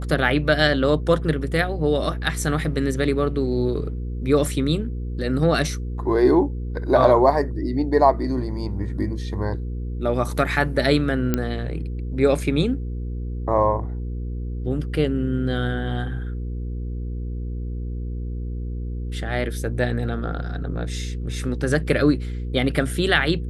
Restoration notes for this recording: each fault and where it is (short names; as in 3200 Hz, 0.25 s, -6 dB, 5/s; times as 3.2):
hum 60 Hz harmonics 8 -28 dBFS
11.34 pop -7 dBFS